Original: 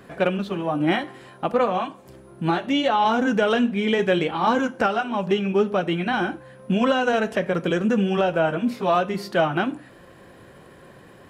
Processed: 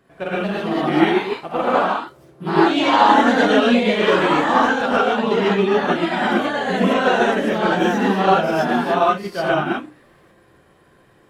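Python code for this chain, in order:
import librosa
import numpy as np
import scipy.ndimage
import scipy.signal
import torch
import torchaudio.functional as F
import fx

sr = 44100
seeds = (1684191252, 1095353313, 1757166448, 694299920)

y = fx.rev_gated(x, sr, seeds[0], gate_ms=170, shape='rising', drr_db=-7.0)
y = fx.echo_pitch(y, sr, ms=253, semitones=2, count=2, db_per_echo=-3.0)
y = fx.upward_expand(y, sr, threshold_db=-30.0, expansion=1.5)
y = F.gain(torch.from_numpy(y), -2.0).numpy()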